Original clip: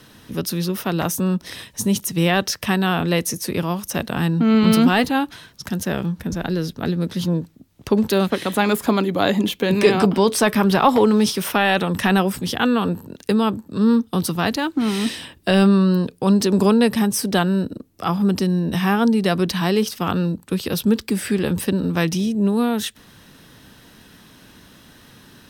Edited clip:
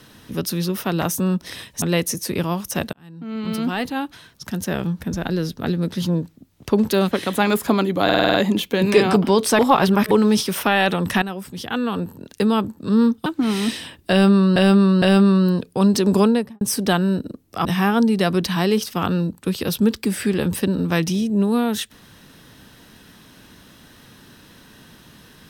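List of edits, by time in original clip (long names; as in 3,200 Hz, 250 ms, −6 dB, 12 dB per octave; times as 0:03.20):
0:01.82–0:03.01: remove
0:04.12–0:06.07: fade in
0:09.23: stutter 0.05 s, 7 plays
0:10.48–0:11.00: reverse
0:12.11–0:13.38: fade in linear, from −14 dB
0:14.15–0:14.64: remove
0:15.48–0:15.94: repeat, 3 plays
0:16.68–0:17.07: fade out and dull
0:18.11–0:18.70: remove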